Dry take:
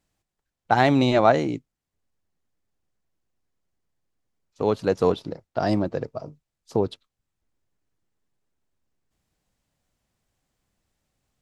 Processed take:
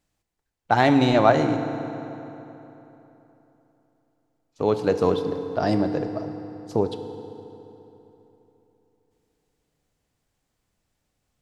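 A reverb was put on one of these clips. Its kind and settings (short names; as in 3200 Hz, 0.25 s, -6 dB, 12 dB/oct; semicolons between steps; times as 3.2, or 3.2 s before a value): FDN reverb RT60 3.4 s, high-frequency decay 0.7×, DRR 7.5 dB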